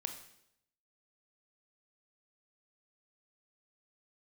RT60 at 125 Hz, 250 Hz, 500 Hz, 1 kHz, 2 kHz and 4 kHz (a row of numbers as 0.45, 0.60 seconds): 0.90, 0.80, 0.80, 0.70, 0.70, 0.75 seconds